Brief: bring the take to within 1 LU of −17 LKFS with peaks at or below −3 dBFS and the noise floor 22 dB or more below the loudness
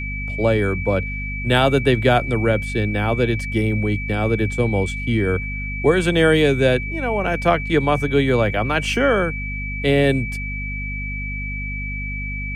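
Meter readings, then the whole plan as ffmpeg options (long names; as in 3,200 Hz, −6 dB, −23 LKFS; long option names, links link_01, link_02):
mains hum 50 Hz; hum harmonics up to 250 Hz; level of the hum −26 dBFS; interfering tone 2,300 Hz; level of the tone −28 dBFS; integrated loudness −20.0 LKFS; sample peak −3.0 dBFS; target loudness −17.0 LKFS
→ -af "bandreject=frequency=50:width_type=h:width=6,bandreject=frequency=100:width_type=h:width=6,bandreject=frequency=150:width_type=h:width=6,bandreject=frequency=200:width_type=h:width=6,bandreject=frequency=250:width_type=h:width=6"
-af "bandreject=frequency=2300:width=30"
-af "volume=3dB,alimiter=limit=-3dB:level=0:latency=1"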